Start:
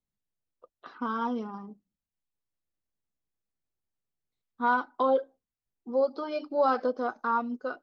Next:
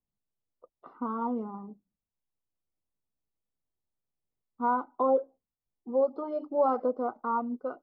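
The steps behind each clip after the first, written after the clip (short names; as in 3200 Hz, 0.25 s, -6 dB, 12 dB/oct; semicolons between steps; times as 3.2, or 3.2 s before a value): polynomial smoothing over 65 samples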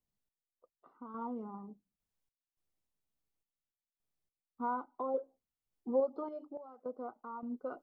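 in parallel at +2.5 dB: compressor, threshold -34 dBFS, peak gain reduction 13.5 dB; on the sum: random-step tremolo 3.5 Hz, depth 95%; gain -5.5 dB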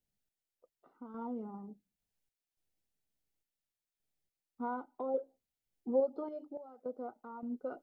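bell 1100 Hz -11.5 dB 0.35 oct; gain +1 dB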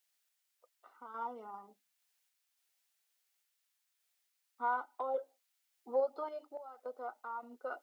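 HPF 1100 Hz 12 dB/oct; gain +11 dB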